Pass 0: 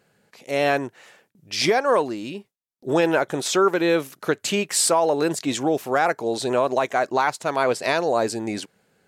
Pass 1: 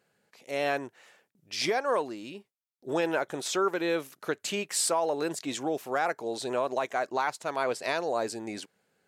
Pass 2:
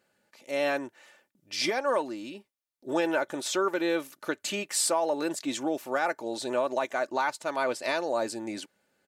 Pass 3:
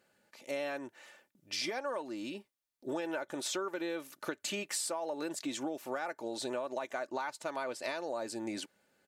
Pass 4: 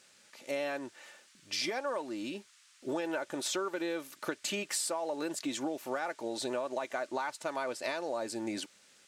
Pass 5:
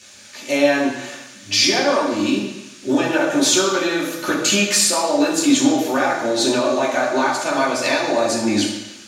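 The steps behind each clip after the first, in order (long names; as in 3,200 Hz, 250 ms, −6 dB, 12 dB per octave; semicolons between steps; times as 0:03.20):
low-shelf EQ 200 Hz −7 dB; level −7.5 dB
comb filter 3.4 ms, depth 47%
downward compressor, threshold −34 dBFS, peak gain reduction 11.5 dB
noise in a band 1,200–8,800 Hz −65 dBFS; level +2 dB
convolution reverb RT60 1.0 s, pre-delay 3 ms, DRR −6.5 dB; level +8 dB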